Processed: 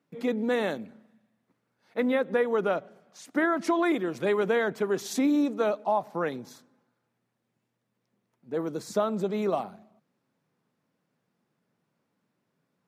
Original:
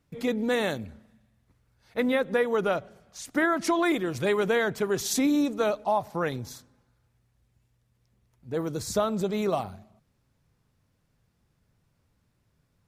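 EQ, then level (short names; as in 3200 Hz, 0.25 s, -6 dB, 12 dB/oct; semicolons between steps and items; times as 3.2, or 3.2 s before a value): HPF 180 Hz 24 dB/oct; high shelf 3100 Hz -9.5 dB; 0.0 dB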